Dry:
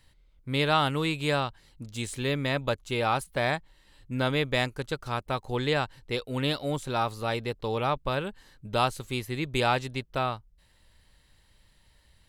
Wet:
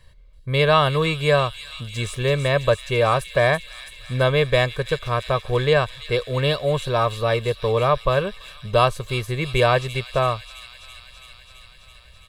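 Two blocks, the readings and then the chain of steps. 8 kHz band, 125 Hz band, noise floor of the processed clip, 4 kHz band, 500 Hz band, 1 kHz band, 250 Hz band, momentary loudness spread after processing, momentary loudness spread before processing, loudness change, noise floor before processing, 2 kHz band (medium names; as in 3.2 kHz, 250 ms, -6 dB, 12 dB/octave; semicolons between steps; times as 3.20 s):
+4.5 dB, +9.0 dB, -48 dBFS, +6.0 dB, +10.5 dB, +6.0 dB, +2.5 dB, 12 LU, 9 LU, +8.0 dB, -63 dBFS, +7.0 dB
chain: treble shelf 3.3 kHz -7.5 dB; comb 1.8 ms, depth 76%; on a send: feedback echo behind a high-pass 332 ms, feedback 76%, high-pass 3.8 kHz, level -6 dB; on the sum: trim +7 dB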